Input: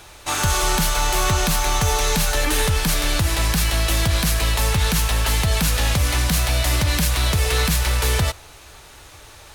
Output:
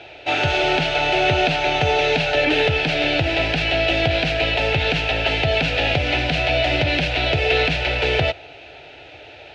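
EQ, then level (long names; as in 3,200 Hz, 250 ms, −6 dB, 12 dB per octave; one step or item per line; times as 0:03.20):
loudspeaker in its box 150–3,500 Hz, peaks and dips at 150 Hz +7 dB, 270 Hz +4 dB, 700 Hz +9 dB, 1,300 Hz +7 dB, 2,600 Hz +8 dB
low-shelf EQ 320 Hz +3.5 dB
phaser with its sweep stopped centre 470 Hz, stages 4
+5.0 dB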